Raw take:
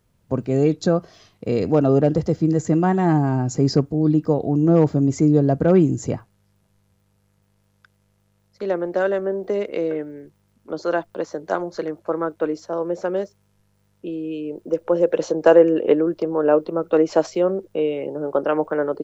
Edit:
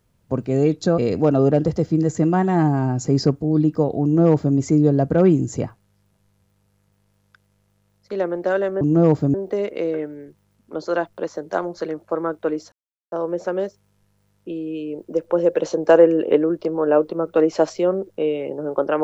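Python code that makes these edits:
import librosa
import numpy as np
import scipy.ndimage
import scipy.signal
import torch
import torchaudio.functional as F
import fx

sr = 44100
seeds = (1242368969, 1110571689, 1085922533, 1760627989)

y = fx.edit(x, sr, fx.cut(start_s=0.98, length_s=0.5),
    fx.duplicate(start_s=4.53, length_s=0.53, to_s=9.31),
    fx.insert_silence(at_s=12.69, length_s=0.4), tone=tone)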